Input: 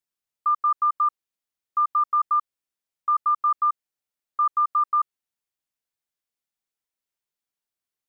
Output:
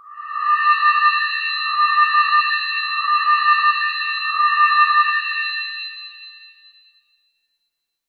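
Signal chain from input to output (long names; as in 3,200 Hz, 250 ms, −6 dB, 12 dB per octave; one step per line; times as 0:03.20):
peak hold with a rise ahead of every peak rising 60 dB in 1.10 s
reverb with rising layers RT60 1.9 s, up +7 semitones, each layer −2 dB, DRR 1 dB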